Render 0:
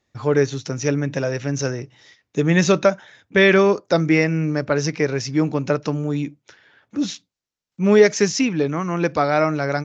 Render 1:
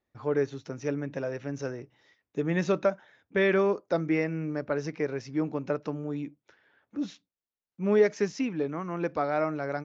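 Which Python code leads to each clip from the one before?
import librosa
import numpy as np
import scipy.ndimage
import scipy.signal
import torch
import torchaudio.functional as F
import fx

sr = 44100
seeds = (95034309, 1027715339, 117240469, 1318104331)

y = fx.lowpass(x, sr, hz=1500.0, slope=6)
y = fx.peak_eq(y, sr, hz=120.0, db=-6.5, octaves=1.3)
y = y * librosa.db_to_amplitude(-8.0)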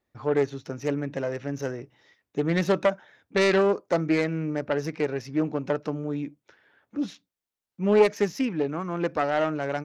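y = fx.self_delay(x, sr, depth_ms=0.24)
y = y * librosa.db_to_amplitude(3.5)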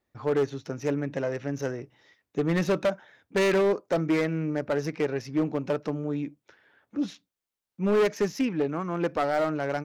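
y = np.clip(10.0 ** (18.5 / 20.0) * x, -1.0, 1.0) / 10.0 ** (18.5 / 20.0)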